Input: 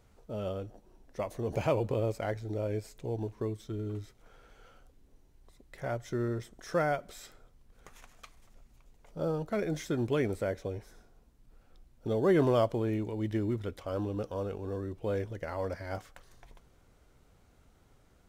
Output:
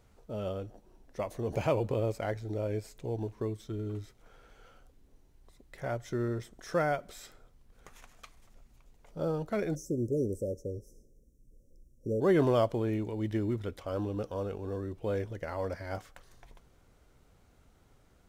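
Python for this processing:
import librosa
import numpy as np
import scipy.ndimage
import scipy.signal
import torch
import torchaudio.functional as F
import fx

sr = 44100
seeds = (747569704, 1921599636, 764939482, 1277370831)

y = fx.cheby1_bandstop(x, sr, low_hz=560.0, high_hz=5600.0, order=5, at=(9.74, 12.2), fade=0.02)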